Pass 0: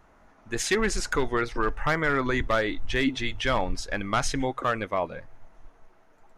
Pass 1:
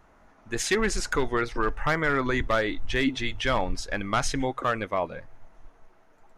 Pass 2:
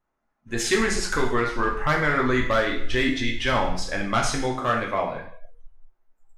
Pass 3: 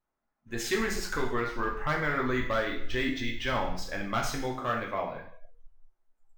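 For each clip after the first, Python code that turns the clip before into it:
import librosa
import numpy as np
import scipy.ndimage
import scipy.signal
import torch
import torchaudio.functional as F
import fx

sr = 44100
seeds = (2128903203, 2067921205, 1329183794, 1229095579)

y1 = x
y2 = fx.rev_double_slope(y1, sr, seeds[0], early_s=0.6, late_s=2.2, knee_db=-27, drr_db=-0.5)
y2 = fx.noise_reduce_blind(y2, sr, reduce_db=23)
y3 = np.interp(np.arange(len(y2)), np.arange(len(y2))[::2], y2[::2])
y3 = y3 * librosa.db_to_amplitude(-7.0)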